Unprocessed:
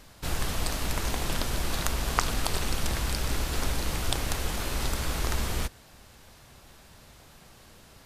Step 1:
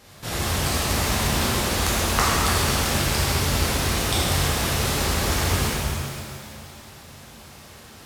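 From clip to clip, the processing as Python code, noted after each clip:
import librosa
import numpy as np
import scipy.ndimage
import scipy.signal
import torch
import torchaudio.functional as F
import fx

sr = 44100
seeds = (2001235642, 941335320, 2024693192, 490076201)

y = scipy.signal.sosfilt(scipy.signal.butter(2, 77.0, 'highpass', fs=sr, output='sos'), x)
y = fx.rev_shimmer(y, sr, seeds[0], rt60_s=2.3, semitones=7, shimmer_db=-8, drr_db=-8.0)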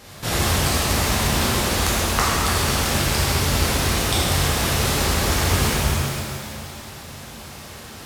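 y = fx.rider(x, sr, range_db=4, speed_s=0.5)
y = y * librosa.db_to_amplitude(2.5)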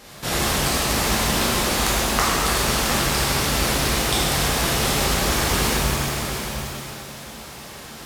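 y = fx.peak_eq(x, sr, hz=90.0, db=-11.5, octaves=0.59)
y = y + 10.0 ** (-8.0 / 20.0) * np.pad(y, (int(708 * sr / 1000.0), 0))[:len(y)]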